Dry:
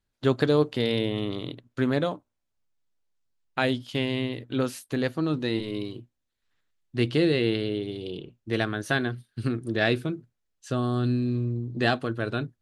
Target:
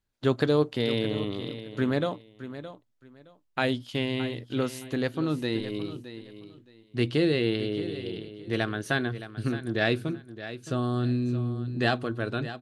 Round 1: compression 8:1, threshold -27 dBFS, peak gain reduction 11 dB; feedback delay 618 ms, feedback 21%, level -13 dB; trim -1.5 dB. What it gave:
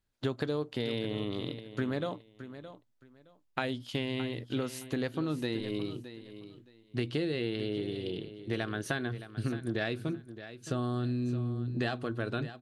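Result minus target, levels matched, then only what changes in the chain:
compression: peak gain reduction +11 dB
remove: compression 8:1, threshold -27 dBFS, peak gain reduction 11 dB

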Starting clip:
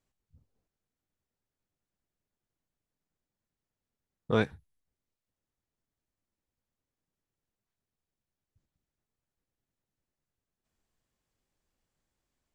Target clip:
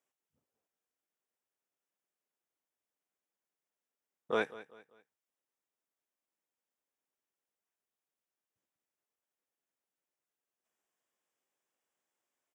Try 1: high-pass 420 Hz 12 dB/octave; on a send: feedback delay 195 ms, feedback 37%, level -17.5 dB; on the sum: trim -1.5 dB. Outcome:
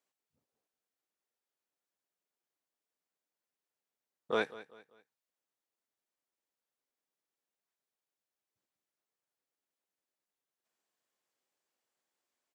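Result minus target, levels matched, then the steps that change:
4 kHz band +2.5 dB
add after high-pass: peaking EQ 4.3 kHz -13.5 dB 0.25 oct

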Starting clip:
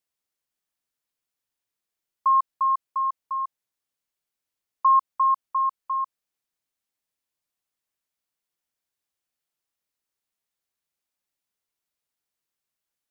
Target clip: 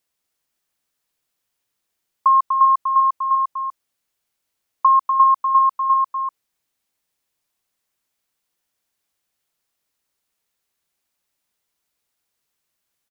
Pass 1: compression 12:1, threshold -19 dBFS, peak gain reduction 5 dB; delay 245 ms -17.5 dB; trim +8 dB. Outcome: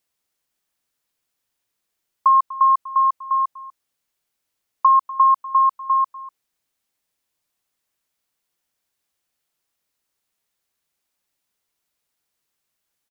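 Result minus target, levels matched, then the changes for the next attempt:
echo-to-direct -11.5 dB
change: delay 245 ms -6 dB

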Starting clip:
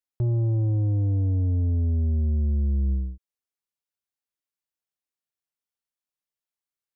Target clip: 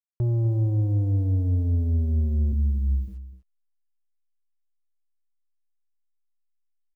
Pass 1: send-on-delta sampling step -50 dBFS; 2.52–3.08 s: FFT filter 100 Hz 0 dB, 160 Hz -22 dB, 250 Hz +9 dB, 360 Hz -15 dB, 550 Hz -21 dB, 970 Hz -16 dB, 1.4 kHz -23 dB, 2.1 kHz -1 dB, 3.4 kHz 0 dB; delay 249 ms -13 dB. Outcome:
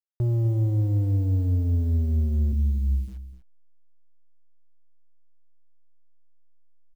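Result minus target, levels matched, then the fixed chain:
send-on-delta sampling: distortion +16 dB
send-on-delta sampling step -59.5 dBFS; 2.52–3.08 s: FFT filter 100 Hz 0 dB, 160 Hz -22 dB, 250 Hz +9 dB, 360 Hz -15 dB, 550 Hz -21 dB, 970 Hz -16 dB, 1.4 kHz -23 dB, 2.1 kHz -1 dB, 3.4 kHz 0 dB; delay 249 ms -13 dB

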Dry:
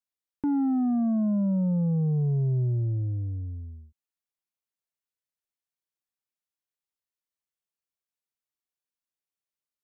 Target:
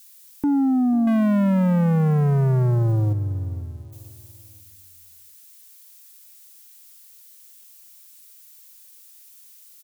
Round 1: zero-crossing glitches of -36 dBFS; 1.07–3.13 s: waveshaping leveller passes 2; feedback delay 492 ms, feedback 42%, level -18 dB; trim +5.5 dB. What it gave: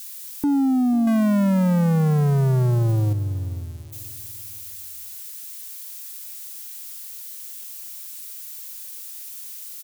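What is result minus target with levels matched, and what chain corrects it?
zero-crossing glitches: distortion +12 dB
zero-crossing glitches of -48 dBFS; 1.07–3.13 s: waveshaping leveller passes 2; feedback delay 492 ms, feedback 42%, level -18 dB; trim +5.5 dB

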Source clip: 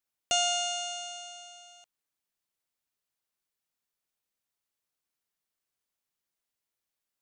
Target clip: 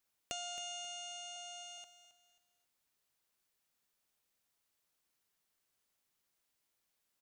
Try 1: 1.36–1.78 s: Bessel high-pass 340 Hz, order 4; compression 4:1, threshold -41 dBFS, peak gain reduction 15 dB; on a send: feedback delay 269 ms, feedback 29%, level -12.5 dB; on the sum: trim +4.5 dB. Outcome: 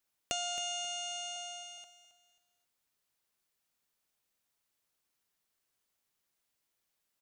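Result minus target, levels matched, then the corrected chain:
compression: peak gain reduction -7 dB
1.36–1.78 s: Bessel high-pass 340 Hz, order 4; compression 4:1, threshold -50 dBFS, peak gain reduction 21.5 dB; on a send: feedback delay 269 ms, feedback 29%, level -12.5 dB; on the sum: trim +4.5 dB

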